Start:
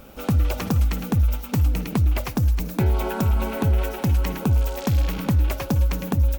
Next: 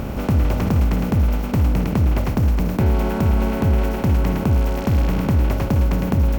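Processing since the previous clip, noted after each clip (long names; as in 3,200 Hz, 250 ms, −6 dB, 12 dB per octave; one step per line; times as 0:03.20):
compressor on every frequency bin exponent 0.4
high-shelf EQ 2,200 Hz −9.5 dB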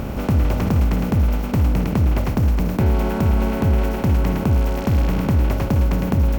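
no processing that can be heard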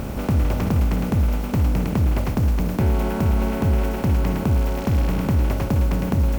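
bit reduction 7 bits
level −2 dB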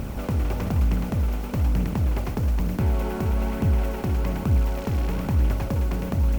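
flanger 1.1 Hz, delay 0.3 ms, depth 2.6 ms, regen +63%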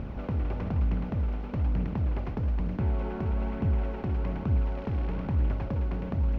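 high-frequency loss of the air 290 metres
level −5 dB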